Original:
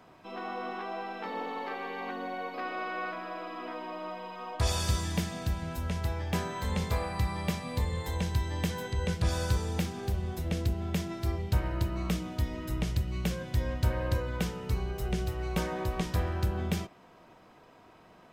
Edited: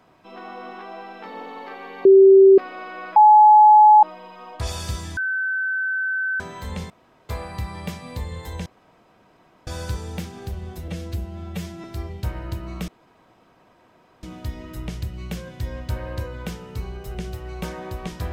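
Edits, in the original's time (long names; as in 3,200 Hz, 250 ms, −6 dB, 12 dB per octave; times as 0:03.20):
0:02.05–0:02.58: beep over 387 Hz −6.5 dBFS
0:03.16–0:04.03: beep over 850 Hz −7 dBFS
0:05.17–0:06.40: beep over 1,530 Hz −21 dBFS
0:06.90: splice in room tone 0.39 s
0:08.27–0:09.28: fill with room tone
0:10.49–0:11.13: time-stretch 1.5×
0:12.17: splice in room tone 1.35 s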